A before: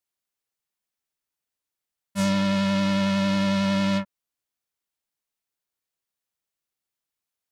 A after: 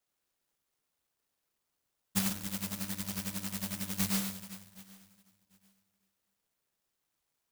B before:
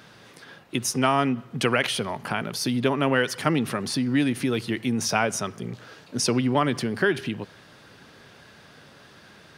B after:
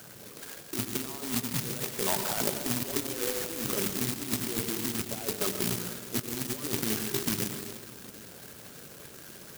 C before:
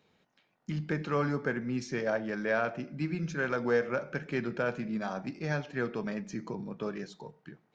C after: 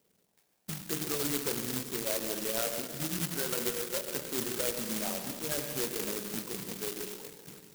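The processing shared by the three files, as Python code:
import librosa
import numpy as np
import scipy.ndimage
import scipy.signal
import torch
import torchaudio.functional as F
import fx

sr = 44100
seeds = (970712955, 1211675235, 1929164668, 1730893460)

p1 = fx.envelope_sharpen(x, sr, power=3.0)
p2 = scipy.signal.sosfilt(scipy.signal.butter(2, 81.0, 'highpass', fs=sr, output='sos'), p1)
p3 = fx.hum_notches(p2, sr, base_hz=50, count=10)
p4 = fx.over_compress(p3, sr, threshold_db=-29.0, ratio=-0.5)
p5 = fx.env_lowpass_down(p4, sr, base_hz=1300.0, full_db=-26.5)
p6 = p5 + fx.echo_feedback(p5, sr, ms=756, feedback_pct=22, wet_db=-22.5, dry=0)
p7 = fx.rev_plate(p6, sr, seeds[0], rt60_s=1.7, hf_ratio=1.0, predelay_ms=80, drr_db=5.5)
p8 = (np.kron(p7[::3], np.eye(3)[0]) * 3)[:len(p7)]
p9 = fx.clock_jitter(p8, sr, seeds[1], jitter_ms=0.12)
y = p9 * 10.0 ** (-4.5 / 20.0)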